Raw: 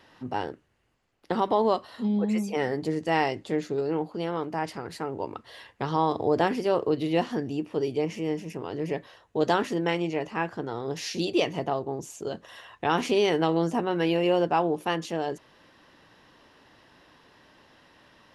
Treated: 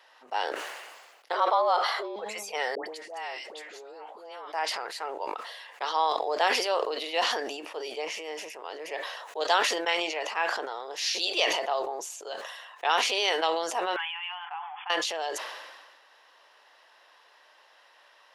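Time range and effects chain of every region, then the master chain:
0:01.33–0:02.16: high-shelf EQ 3,400 Hz −10.5 dB + frequency shifter +160 Hz + multiband upward and downward compressor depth 40%
0:02.75–0:04.53: downward compressor 3 to 1, threshold −35 dBFS + all-pass dispersion highs, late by 114 ms, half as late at 1,100 Hz
0:13.96–0:14.90: mu-law and A-law mismatch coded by mu + linear-phase brick-wall band-pass 730–3,500 Hz + downward compressor 4 to 1, threshold −36 dBFS
whole clip: high-pass filter 570 Hz 24 dB per octave; dynamic equaliser 4,000 Hz, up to +7 dB, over −48 dBFS, Q 0.91; level that may fall only so fast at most 38 dB per second

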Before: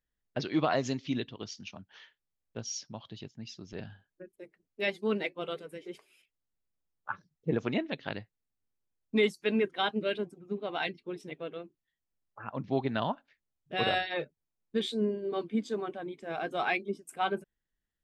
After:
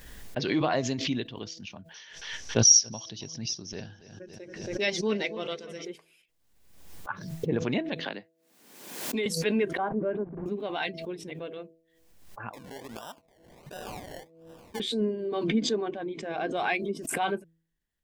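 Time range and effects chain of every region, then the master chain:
0:01.94–0:05.85: low-pass with resonance 5,800 Hz, resonance Q 11 + delay with a low-pass on its return 275 ms, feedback 40%, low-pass 4,000 Hz, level −19 dB
0:08.00–0:09.26: high-pass filter 200 Hz 24 dB per octave + multiband upward and downward compressor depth 70%
0:09.77–0:10.46: hold until the input has moved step −52.5 dBFS + low-pass filter 1,300 Hz 24 dB per octave + noise gate −47 dBFS, range −11 dB
0:12.53–0:14.80: high-pass filter 790 Hz 6 dB per octave + downward compressor 2.5 to 1, threshold −43 dBFS + sample-and-hold swept by an LFO 28×, swing 60% 1.4 Hz
0:15.43–0:16.57: low-pass filter 7,000 Hz 24 dB per octave + dynamic equaliser 340 Hz, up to +4 dB, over −40 dBFS, Q 1
whole clip: notch filter 1,300 Hz, Q 11; hum removal 163.9 Hz, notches 4; background raised ahead of every attack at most 56 dB per second; level +1.5 dB

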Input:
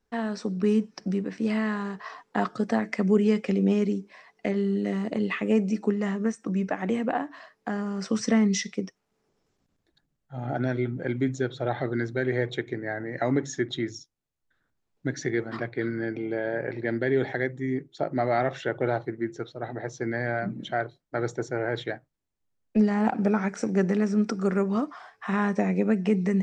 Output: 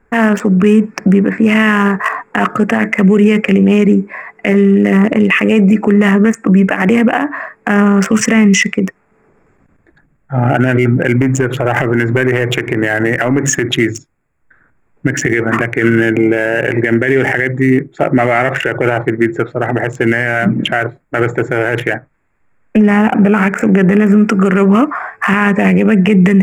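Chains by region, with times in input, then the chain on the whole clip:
0:11.21–0:13.65: leveller curve on the samples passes 1 + downward compressor 16 to 1, threshold −29 dBFS
0:21.24–0:24.06: low-pass filter 2,900 Hz 6 dB per octave + one half of a high-frequency compander encoder only
whole clip: adaptive Wiener filter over 15 samples; drawn EQ curve 780 Hz 0 dB, 2,800 Hz +14 dB, 4,000 Hz −13 dB, 7,300 Hz +8 dB; boost into a limiter +22.5 dB; level −1 dB

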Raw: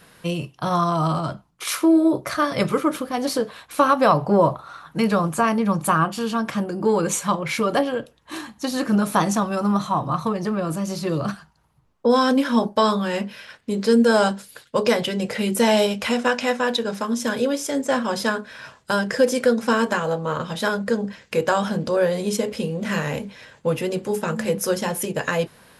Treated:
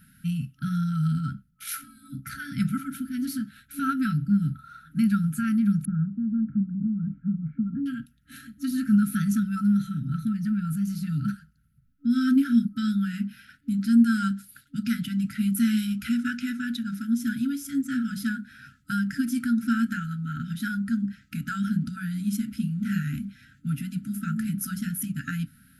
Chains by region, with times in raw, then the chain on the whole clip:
0:05.85–0:07.86: Bessel low-pass filter 550 Hz, order 4 + multiband upward and downward compressor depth 40%
whole clip: brick-wall band-stop 280–1,300 Hz; flat-topped bell 3,800 Hz −13 dB 2.7 octaves

